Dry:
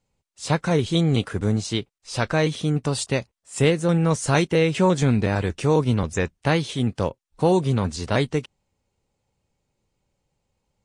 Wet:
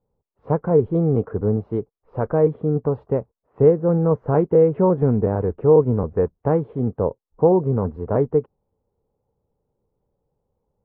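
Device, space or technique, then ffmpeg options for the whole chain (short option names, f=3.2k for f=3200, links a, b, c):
under water: -af "lowpass=f=1.1k:w=0.5412,lowpass=f=1.1k:w=1.3066,equalizer=f=450:t=o:w=0.36:g=9"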